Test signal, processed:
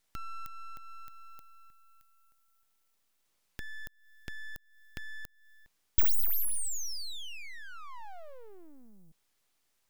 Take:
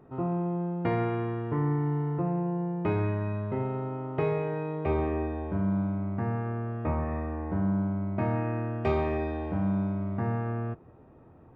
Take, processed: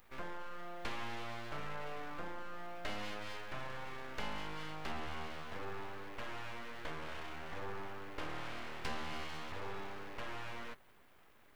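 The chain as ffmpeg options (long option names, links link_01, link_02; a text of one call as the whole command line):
ffmpeg -i in.wav -filter_complex "[0:a]acrossover=split=490[link_01][link_02];[link_02]acompressor=threshold=-40dB:ratio=10[link_03];[link_01][link_03]amix=inputs=2:normalize=0,aderivative,aeval=exprs='abs(val(0))':channel_layout=same,volume=16.5dB" out.wav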